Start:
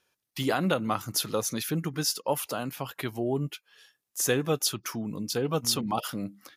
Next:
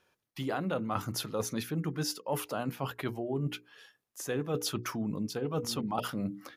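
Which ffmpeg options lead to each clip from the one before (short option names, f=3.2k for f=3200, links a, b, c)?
-af "highshelf=f=2.8k:g=-11,bandreject=f=60:t=h:w=6,bandreject=f=120:t=h:w=6,bandreject=f=180:t=h:w=6,bandreject=f=240:t=h:w=6,bandreject=f=300:t=h:w=6,bandreject=f=360:t=h:w=6,bandreject=f=420:t=h:w=6,bandreject=f=480:t=h:w=6,areverse,acompressor=threshold=-36dB:ratio=6,areverse,volume=6dB"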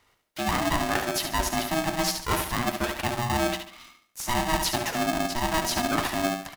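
-filter_complex "[0:a]aeval=exprs='0.158*(cos(1*acos(clip(val(0)/0.158,-1,1)))-cos(1*PI/2))+0.00251*(cos(4*acos(clip(val(0)/0.158,-1,1)))-cos(4*PI/2))':c=same,asplit=2[a][b];[b]aecho=0:1:71|142|213|284:0.447|0.165|0.0612|0.0226[c];[a][c]amix=inputs=2:normalize=0,aeval=exprs='val(0)*sgn(sin(2*PI*480*n/s))':c=same,volume=6.5dB"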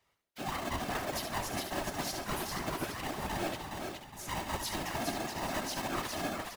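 -filter_complex "[0:a]asplit=2[a][b];[b]aecho=0:1:415|830|1245|1660:0.631|0.215|0.0729|0.0248[c];[a][c]amix=inputs=2:normalize=0,afftfilt=real='hypot(re,im)*cos(2*PI*random(0))':imag='hypot(re,im)*sin(2*PI*random(1))':win_size=512:overlap=0.75,volume=-5dB"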